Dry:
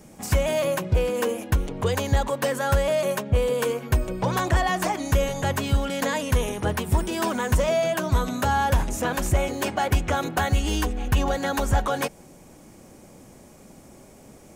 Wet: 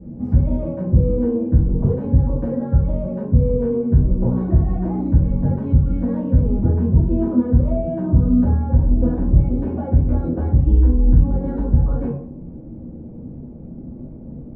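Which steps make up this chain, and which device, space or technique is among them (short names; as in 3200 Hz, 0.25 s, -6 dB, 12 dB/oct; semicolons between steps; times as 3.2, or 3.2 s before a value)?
television next door (compressor, threshold -26 dBFS, peak gain reduction 10.5 dB; LPF 260 Hz 12 dB/oct; reverb RT60 0.60 s, pre-delay 3 ms, DRR -9.5 dB); gain +6 dB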